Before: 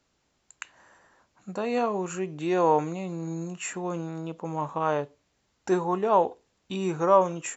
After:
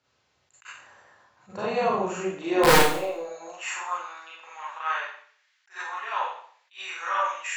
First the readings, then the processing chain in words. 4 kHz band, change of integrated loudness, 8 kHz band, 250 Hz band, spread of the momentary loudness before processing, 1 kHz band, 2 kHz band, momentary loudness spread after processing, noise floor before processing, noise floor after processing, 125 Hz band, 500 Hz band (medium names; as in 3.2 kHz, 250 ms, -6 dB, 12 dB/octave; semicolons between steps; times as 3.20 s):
+12.5 dB, +1.0 dB, no reading, -3.0 dB, 17 LU, 0.0 dB, +11.0 dB, 24 LU, -73 dBFS, -71 dBFS, -4.5 dB, -1.5 dB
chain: low-pass 5.3 kHz 12 dB/octave; peaking EQ 210 Hz -12 dB 1.5 oct; hum notches 60/120/180/240/300/360 Hz; AM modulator 290 Hz, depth 25%; high-pass sweep 110 Hz -> 1.8 kHz, 1.66–4.31 s; integer overflow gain 14.5 dB; Schroeder reverb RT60 0.54 s, combs from 30 ms, DRR -6 dB; attacks held to a fixed rise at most 260 dB/s